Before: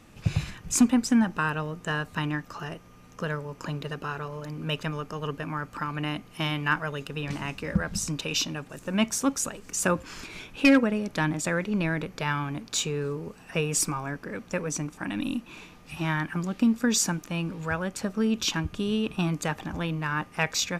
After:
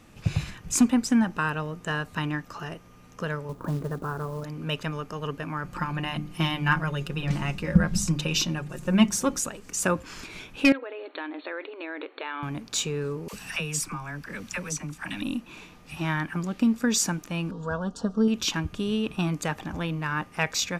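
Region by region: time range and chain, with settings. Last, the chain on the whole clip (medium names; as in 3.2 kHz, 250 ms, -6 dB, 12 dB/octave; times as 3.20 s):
3.49–4.44 s: low-pass 1.5 kHz 24 dB/octave + bass shelf 500 Hz +5 dB + companded quantiser 6-bit
5.64–9.40 s: bass shelf 230 Hz +9 dB + hum notches 50/100/150/200/250/300/350/400/450 Hz + comb 5.6 ms, depth 53%
10.72–12.43 s: compression 16:1, threshold -27 dBFS + brick-wall FIR band-pass 270–4400 Hz
13.28–15.22 s: peaking EQ 430 Hz -9.5 dB 1.9 oct + phase dispersion lows, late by 49 ms, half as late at 670 Hz + three bands compressed up and down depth 70%
17.51–18.28 s: Butterworth band-stop 2.2 kHz, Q 1.1 + distance through air 94 m + comb 4.3 ms, depth 56%
whole clip: none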